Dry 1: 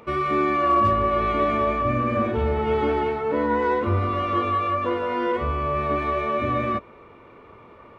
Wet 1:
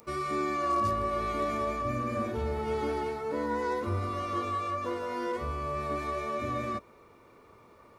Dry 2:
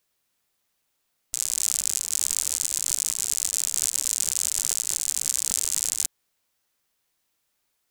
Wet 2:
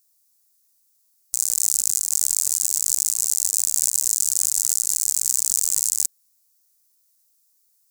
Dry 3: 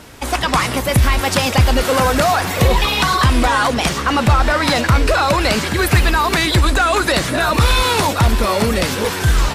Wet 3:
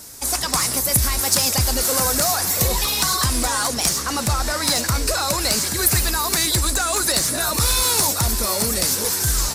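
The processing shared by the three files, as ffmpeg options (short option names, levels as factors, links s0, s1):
-af "aexciter=amount=4.7:drive=8.3:freq=4400,volume=0.355"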